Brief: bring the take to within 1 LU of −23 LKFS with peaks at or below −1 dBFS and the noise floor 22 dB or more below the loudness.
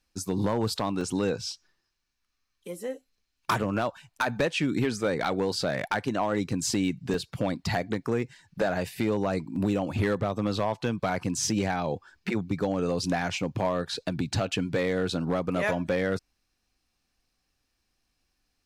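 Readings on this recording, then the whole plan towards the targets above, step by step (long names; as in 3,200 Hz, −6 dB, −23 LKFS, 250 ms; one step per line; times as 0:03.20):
share of clipped samples 0.6%; peaks flattened at −18.0 dBFS; number of dropouts 3; longest dropout 2.1 ms; integrated loudness −29.0 LKFS; sample peak −18.0 dBFS; target loudness −23.0 LKFS
→ clipped peaks rebuilt −18 dBFS
repair the gap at 0:01.01/0:07.14/0:09.56, 2.1 ms
level +6 dB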